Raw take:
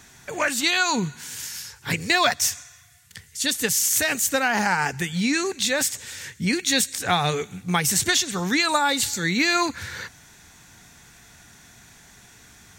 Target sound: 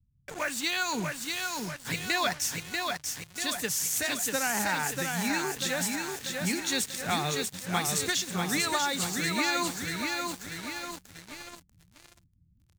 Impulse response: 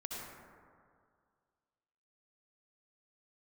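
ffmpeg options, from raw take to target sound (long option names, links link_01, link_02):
-filter_complex "[0:a]aecho=1:1:640|1280|1920|2560|3200|3840|4480:0.631|0.328|0.171|0.0887|0.0461|0.024|0.0125,acrossover=split=150[link_01][link_02];[link_02]acrusher=bits=4:mix=0:aa=0.5[link_03];[link_01][link_03]amix=inputs=2:normalize=0,volume=-8.5dB"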